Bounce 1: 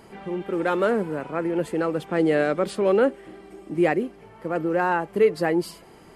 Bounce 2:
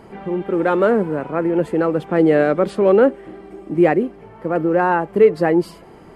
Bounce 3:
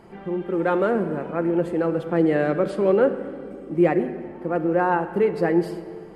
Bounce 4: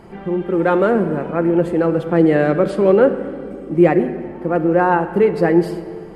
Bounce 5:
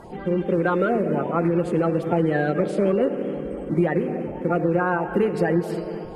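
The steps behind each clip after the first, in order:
treble shelf 2.6 kHz -12 dB; trim +7 dB
simulated room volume 3400 m³, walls mixed, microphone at 0.87 m; trim -6 dB
bass shelf 130 Hz +5 dB; trim +5.5 dB
coarse spectral quantiser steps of 30 dB; compression, threshold -17 dBFS, peak gain reduction 10 dB; band-passed feedback delay 244 ms, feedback 85%, band-pass 900 Hz, level -17 dB

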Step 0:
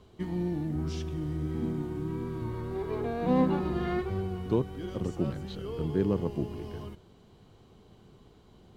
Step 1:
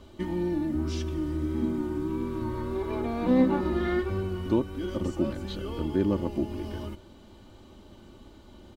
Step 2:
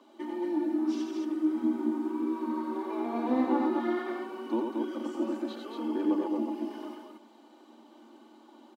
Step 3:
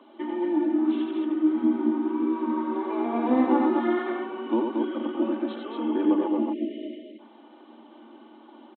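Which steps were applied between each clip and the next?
comb 3.4 ms, depth 71%; in parallel at -1.5 dB: compression, threshold -38 dBFS, peak gain reduction 18.5 dB
phaser 1.8 Hz, delay 4.3 ms, feedback 30%; rippled Chebyshev high-pass 220 Hz, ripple 9 dB; on a send: loudspeakers at several distances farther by 31 m -4 dB, 78 m -4 dB
spectral selection erased 6.53–7.19 s, 670–1800 Hz; resampled via 8 kHz; trim +5.5 dB

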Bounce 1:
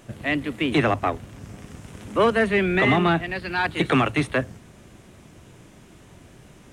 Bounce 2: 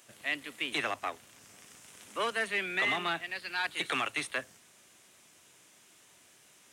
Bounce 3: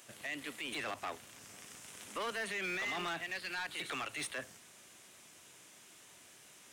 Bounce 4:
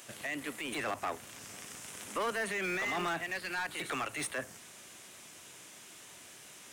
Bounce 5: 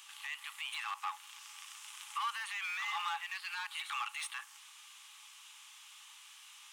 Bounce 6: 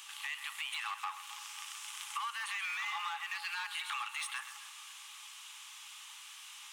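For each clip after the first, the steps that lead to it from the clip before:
high-pass 1.2 kHz 6 dB/octave; treble shelf 3.4 kHz +9.5 dB; trim -8 dB
peak limiter -29.5 dBFS, peak gain reduction 11 dB; hard clipper -36 dBFS, distortion -13 dB; trim +2 dB
dynamic bell 3.6 kHz, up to -7 dB, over -55 dBFS, Q 0.92; trim +6 dB
rippled Chebyshev high-pass 810 Hz, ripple 9 dB; trim +2.5 dB
compression, threshold -40 dBFS, peak gain reduction 8 dB; two-band feedback delay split 1.3 kHz, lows 271 ms, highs 130 ms, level -11.5 dB; trim +4.5 dB

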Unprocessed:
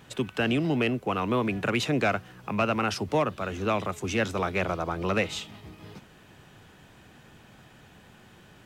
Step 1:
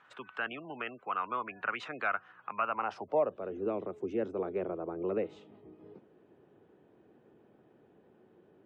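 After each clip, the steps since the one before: spectral gate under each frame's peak -30 dB strong; band-pass sweep 1.3 kHz -> 390 Hz, 2.56–3.53 s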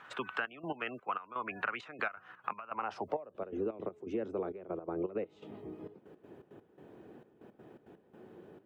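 compression 10:1, threshold -40 dBFS, peak gain reduction 16.5 dB; trance gate "xxxxx..x.xx.x.." 166 bpm -12 dB; trim +8.5 dB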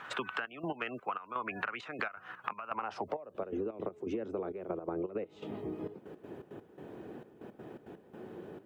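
compression 6:1, threshold -40 dBFS, peak gain reduction 11 dB; trim +7 dB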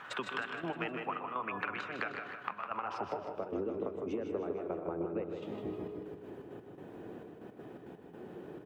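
feedback delay 155 ms, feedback 49%, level -6.5 dB; reverberation RT60 0.70 s, pre-delay 125 ms, DRR 9 dB; trim -1.5 dB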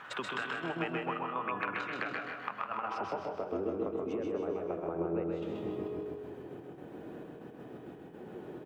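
feedback delay 131 ms, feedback 38%, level -3 dB

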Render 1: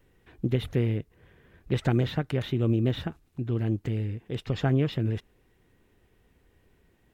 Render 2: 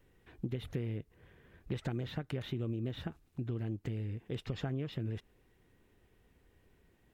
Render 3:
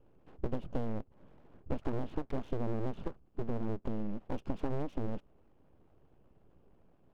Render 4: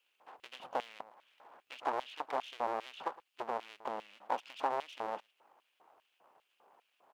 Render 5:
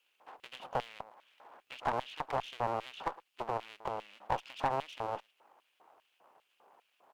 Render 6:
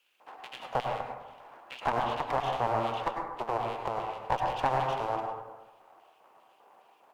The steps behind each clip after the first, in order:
compression 6:1, threshold -30 dBFS, peak gain reduction 10.5 dB; trim -3.5 dB
boxcar filter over 23 samples; full-wave rectifier; trim +5 dB
delay 111 ms -19.5 dB; LFO high-pass square 2.5 Hz 870–2800 Hz; trim +7 dB
valve stage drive 24 dB, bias 0.65; trim +5.5 dB
plate-style reverb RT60 1.1 s, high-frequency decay 0.25×, pre-delay 85 ms, DRR 1.5 dB; trim +3.5 dB

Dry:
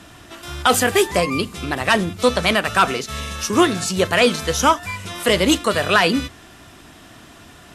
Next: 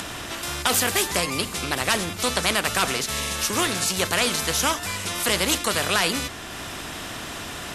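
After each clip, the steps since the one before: upward compressor, threshold -34 dBFS; spectrum-flattening compressor 2:1; trim -3 dB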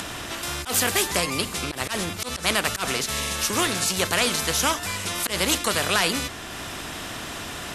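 slow attack 113 ms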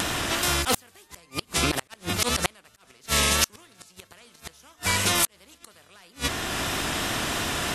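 inverted gate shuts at -14 dBFS, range -36 dB; vibrato 3 Hz 46 cents; trim +6 dB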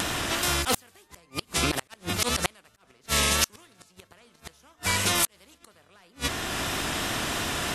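tape noise reduction on one side only decoder only; trim -1.5 dB

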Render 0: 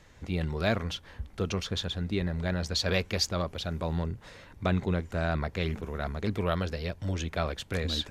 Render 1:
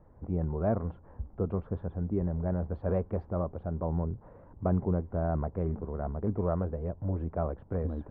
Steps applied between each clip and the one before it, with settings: low-pass 1 kHz 24 dB/octave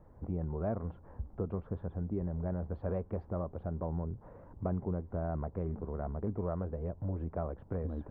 compression 2:1, threshold -35 dBFS, peak gain reduction 7.5 dB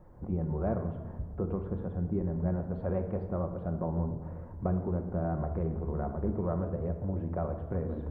simulated room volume 1200 m³, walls mixed, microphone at 0.96 m; trim +2.5 dB

